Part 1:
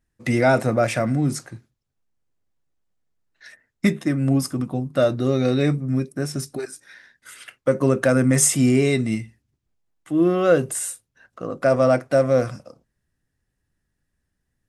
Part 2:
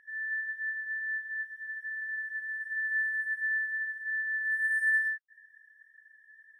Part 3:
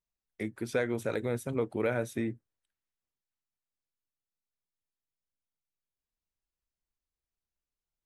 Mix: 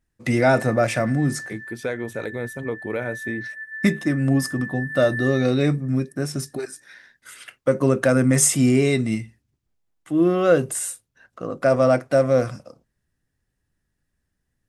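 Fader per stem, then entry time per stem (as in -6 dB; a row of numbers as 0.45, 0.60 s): 0.0, -3.0, +2.5 dB; 0.00, 0.30, 1.10 s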